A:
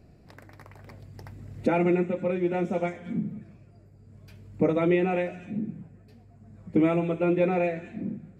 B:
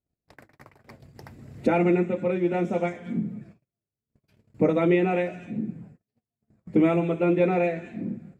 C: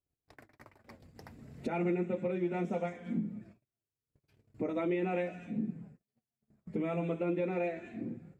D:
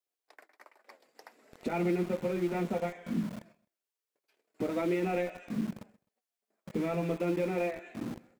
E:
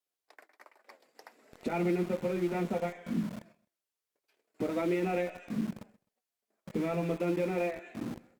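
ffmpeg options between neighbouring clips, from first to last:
ffmpeg -i in.wav -af "bandreject=frequency=50:width_type=h:width=6,bandreject=frequency=100:width_type=h:width=6,bandreject=frequency=150:width_type=h:width=6,bandreject=frequency=200:width_type=h:width=6,agate=range=-37dB:threshold=-49dB:ratio=16:detection=peak,volume=2dB" out.wav
ffmpeg -i in.wav -af "alimiter=limit=-19dB:level=0:latency=1:release=282,flanger=delay=2.2:depth=3.2:regen=-52:speed=0.24:shape=triangular,volume=-1.5dB" out.wav
ffmpeg -i in.wav -filter_complex "[0:a]acrossover=split=400|1800[link_01][link_02][link_03];[link_01]aeval=exprs='val(0)*gte(abs(val(0)),0.0075)':channel_layout=same[link_04];[link_04][link_02][link_03]amix=inputs=3:normalize=0,aecho=1:1:129|258:0.0708|0.0212,volume=2dB" out.wav
ffmpeg -i in.wav -ar 48000 -c:a libopus -b:a 256k out.opus

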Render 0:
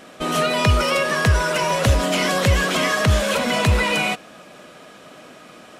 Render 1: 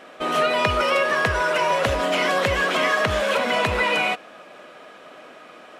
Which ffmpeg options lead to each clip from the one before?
ffmpeg -i in.wav -af "bass=frequency=250:gain=-14,treble=frequency=4000:gain=-11,volume=1dB" out.wav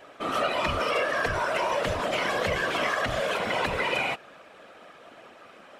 ffmpeg -i in.wav -af "acontrast=63,afftfilt=real='hypot(re,im)*cos(2*PI*random(0))':imag='hypot(re,im)*sin(2*PI*random(1))':win_size=512:overlap=0.75,volume=-6dB" out.wav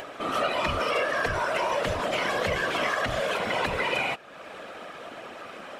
ffmpeg -i in.wav -af "acompressor=mode=upward:threshold=-31dB:ratio=2.5" out.wav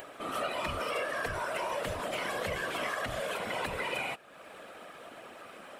ffmpeg -i in.wav -af "aexciter=amount=3.9:drive=1.5:freq=8100,volume=-7.5dB" out.wav

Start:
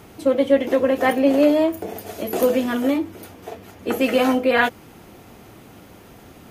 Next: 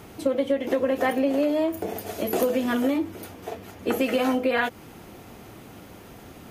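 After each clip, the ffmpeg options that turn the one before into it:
ffmpeg -i in.wav -af "acompressor=threshold=-19dB:ratio=12" out.wav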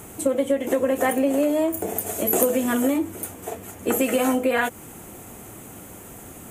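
ffmpeg -i in.wav -af "highshelf=frequency=6200:width_type=q:width=3:gain=8.5,volume=2dB" out.wav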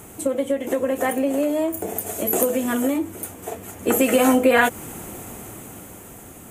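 ffmpeg -i in.wav -af "dynaudnorm=framelen=330:gausssize=9:maxgain=11.5dB,volume=-1dB" out.wav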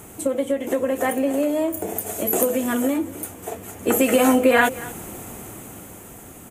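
ffmpeg -i in.wav -af "aecho=1:1:232:0.112" out.wav

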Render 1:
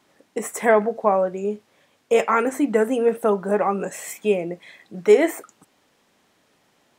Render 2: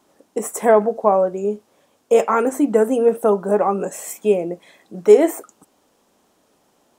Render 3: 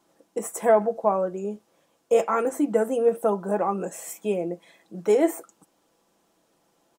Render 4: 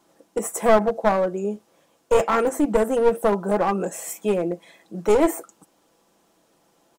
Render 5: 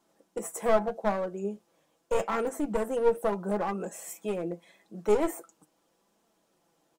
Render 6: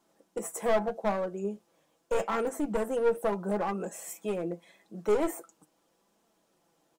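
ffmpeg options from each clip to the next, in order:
ffmpeg -i in.wav -af "equalizer=frequency=125:width_type=o:width=1:gain=-7,equalizer=frequency=2000:width_type=o:width=1:gain=-10,equalizer=frequency=4000:width_type=o:width=1:gain=-5,volume=4.5dB" out.wav
ffmpeg -i in.wav -af "aecho=1:1:6:0.42,volume=-6.5dB" out.wav
ffmpeg -i in.wav -af "aeval=exprs='clip(val(0),-1,0.0708)':channel_layout=same,volume=4.5dB" out.wav
ffmpeg -i in.wav -af "flanger=delay=4.3:depth=2.3:regen=68:speed=0.8:shape=triangular,volume=-4.5dB" out.wav
ffmpeg -i in.wav -af "asoftclip=type=tanh:threshold=-16dB" out.wav

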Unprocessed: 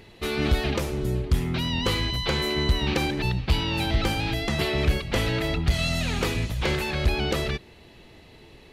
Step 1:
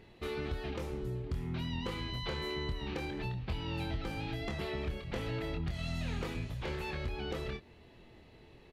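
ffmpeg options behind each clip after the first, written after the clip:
ffmpeg -i in.wav -filter_complex "[0:a]highshelf=frequency=3400:gain=-9,acompressor=threshold=-28dB:ratio=3,asplit=2[link_01][link_02];[link_02]adelay=25,volume=-6dB[link_03];[link_01][link_03]amix=inputs=2:normalize=0,volume=-8dB" out.wav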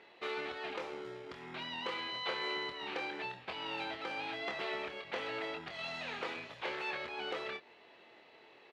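ffmpeg -i in.wav -filter_complex "[0:a]asplit=2[link_01][link_02];[link_02]acrusher=samples=25:mix=1:aa=0.000001,volume=-11.5dB[link_03];[link_01][link_03]amix=inputs=2:normalize=0,highpass=650,lowpass=3800,volume=4.5dB" out.wav

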